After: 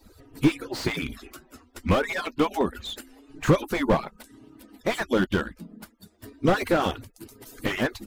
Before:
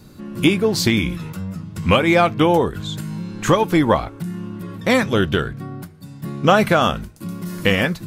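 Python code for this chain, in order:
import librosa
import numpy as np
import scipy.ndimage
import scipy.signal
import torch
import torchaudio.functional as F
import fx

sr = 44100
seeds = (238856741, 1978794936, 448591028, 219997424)

y = fx.hpss_only(x, sr, part='percussive')
y = fx.slew_limit(y, sr, full_power_hz=120.0)
y = y * librosa.db_to_amplitude(-2.0)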